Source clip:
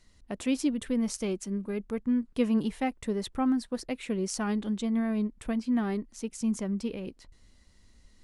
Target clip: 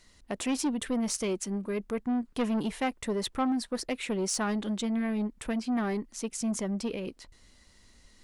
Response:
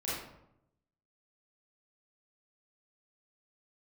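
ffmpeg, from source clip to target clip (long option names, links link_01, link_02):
-af "asoftclip=type=tanh:threshold=-26dB,lowshelf=frequency=280:gain=-8,volume=6dB"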